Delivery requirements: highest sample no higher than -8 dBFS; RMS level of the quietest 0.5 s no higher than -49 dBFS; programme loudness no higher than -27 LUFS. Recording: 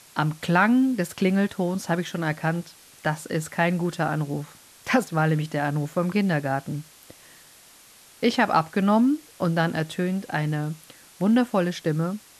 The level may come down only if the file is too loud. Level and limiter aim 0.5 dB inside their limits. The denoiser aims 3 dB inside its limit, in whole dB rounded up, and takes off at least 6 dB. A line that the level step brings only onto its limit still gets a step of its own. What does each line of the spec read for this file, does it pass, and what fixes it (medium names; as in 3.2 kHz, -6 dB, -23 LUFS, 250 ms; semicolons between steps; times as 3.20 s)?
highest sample -7.5 dBFS: fail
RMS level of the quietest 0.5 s -51 dBFS: pass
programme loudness -24.5 LUFS: fail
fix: trim -3 dB